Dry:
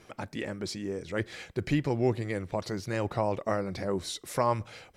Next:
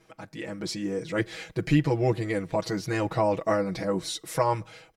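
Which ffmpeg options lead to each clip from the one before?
-af "aecho=1:1:6.2:0.96,dynaudnorm=f=160:g=7:m=3.16,volume=0.422"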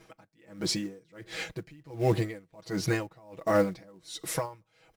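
-filter_complex "[0:a]asplit=2[s0][s1];[s1]acrusher=bits=4:mode=log:mix=0:aa=0.000001,volume=0.708[s2];[s0][s2]amix=inputs=2:normalize=0,alimiter=limit=0.211:level=0:latency=1:release=20,aeval=exprs='val(0)*pow(10,-31*(0.5-0.5*cos(2*PI*1.4*n/s))/20)':c=same"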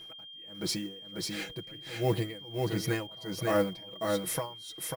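-af "aexciter=amount=2:drive=6.8:freq=9800,aecho=1:1:544:0.668,aeval=exprs='val(0)+0.00794*sin(2*PI*3200*n/s)':c=same,volume=0.708"

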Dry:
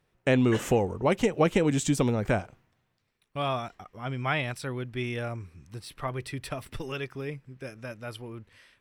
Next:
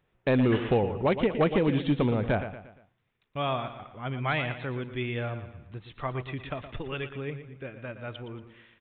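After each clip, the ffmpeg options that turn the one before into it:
-af "aecho=1:1:117|234|351|468:0.282|0.118|0.0497|0.0209,aresample=8000,volume=7.08,asoftclip=hard,volume=0.141,aresample=44100"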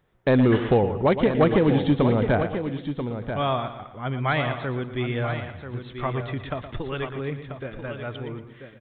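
-af "equalizer=f=2600:t=o:w=0.38:g=-7,aecho=1:1:987:0.355,volume=1.78"

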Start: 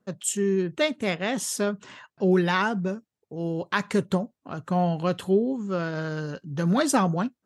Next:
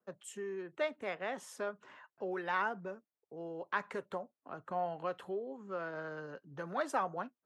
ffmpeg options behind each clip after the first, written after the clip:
-filter_complex "[0:a]acrossover=split=340 2200:gain=0.224 1 0.178[s0][s1][s2];[s0][s1][s2]amix=inputs=3:normalize=0,acrossover=split=470[s3][s4];[s3]acompressor=threshold=0.0126:ratio=6[s5];[s5][s4]amix=inputs=2:normalize=0,volume=0.422"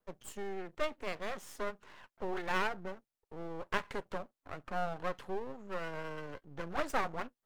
-af "bandreject=f=60:t=h:w=6,bandreject=f=120:t=h:w=6,aeval=exprs='max(val(0),0)':c=same,volume=1.68"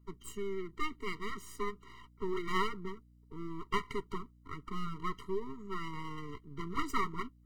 -af "aeval=exprs='val(0)+0.000631*(sin(2*PI*60*n/s)+sin(2*PI*2*60*n/s)/2+sin(2*PI*3*60*n/s)/3+sin(2*PI*4*60*n/s)/4+sin(2*PI*5*60*n/s)/5)':c=same,afftfilt=real='re*eq(mod(floor(b*sr/1024/460),2),0)':imag='im*eq(mod(floor(b*sr/1024/460),2),0)':win_size=1024:overlap=0.75,volume=1.5"

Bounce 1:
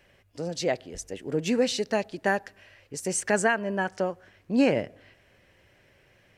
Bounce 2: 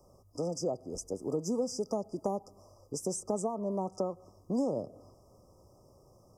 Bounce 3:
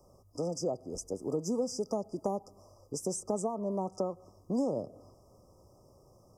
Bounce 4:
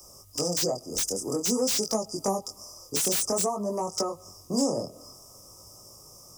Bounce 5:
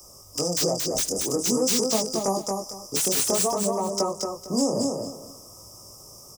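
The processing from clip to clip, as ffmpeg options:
-filter_complex "[0:a]afftfilt=real='re*(1-between(b*sr/4096,1300,4800))':imag='im*(1-between(b*sr/4096,1300,4800))':win_size=4096:overlap=0.75,acrossover=split=160|580[s0][s1][s2];[s0]acompressor=threshold=0.00251:ratio=4[s3];[s1]acompressor=threshold=0.0158:ratio=4[s4];[s2]acompressor=threshold=0.00794:ratio=4[s5];[s3][s4][s5]amix=inputs=3:normalize=0,volume=1.33"
-af anull
-filter_complex "[0:a]flanger=delay=18:depth=7.8:speed=0.52,acrossover=split=150|870|1700[s0][s1][s2][s3];[s3]aeval=exprs='0.0335*sin(PI/2*7.08*val(0)/0.0335)':c=same[s4];[s0][s1][s2][s4]amix=inputs=4:normalize=0,volume=2.11"
-af "aecho=1:1:227|454|681:0.668|0.16|0.0385,volume=1.26"

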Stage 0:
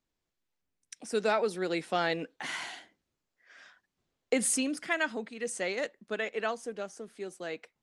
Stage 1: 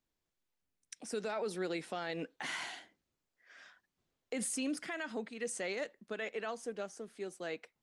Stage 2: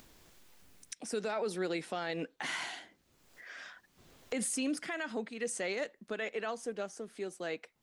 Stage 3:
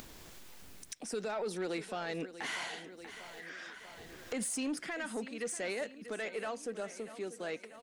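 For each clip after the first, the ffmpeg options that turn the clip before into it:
-af "alimiter=level_in=1.26:limit=0.0631:level=0:latency=1:release=67,volume=0.794,volume=0.75"
-af "acompressor=mode=upward:threshold=0.00794:ratio=2.5,volume=1.33"
-af "aecho=1:1:640|1280|1920|2560|3200:0.168|0.0923|0.0508|0.0279|0.0154,asoftclip=type=tanh:threshold=0.0355,acompressor=mode=upward:threshold=0.00794:ratio=2.5"

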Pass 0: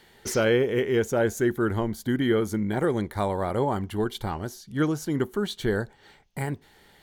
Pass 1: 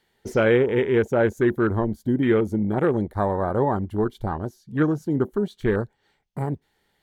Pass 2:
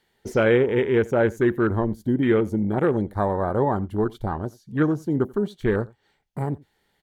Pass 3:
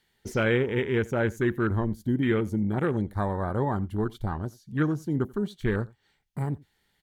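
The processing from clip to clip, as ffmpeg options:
-af "afwtdn=0.0224,volume=1.5"
-af "aecho=1:1:87:0.0668"
-af "equalizer=f=550:w=0.59:g=-8"

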